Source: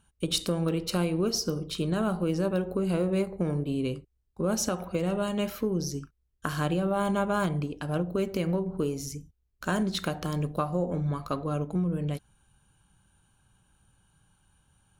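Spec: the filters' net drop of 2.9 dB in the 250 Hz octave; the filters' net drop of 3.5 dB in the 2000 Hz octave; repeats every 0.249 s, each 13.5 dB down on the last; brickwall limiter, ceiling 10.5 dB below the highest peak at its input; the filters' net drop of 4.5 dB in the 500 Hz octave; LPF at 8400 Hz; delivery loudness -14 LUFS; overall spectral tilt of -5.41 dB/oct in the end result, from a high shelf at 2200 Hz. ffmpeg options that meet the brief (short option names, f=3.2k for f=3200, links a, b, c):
-af "lowpass=8.4k,equalizer=f=250:t=o:g=-3.5,equalizer=f=500:t=o:g=-4.5,equalizer=f=2k:t=o:g=-7,highshelf=f=2.2k:g=4,alimiter=limit=-23.5dB:level=0:latency=1,aecho=1:1:249|498:0.211|0.0444,volume=19.5dB"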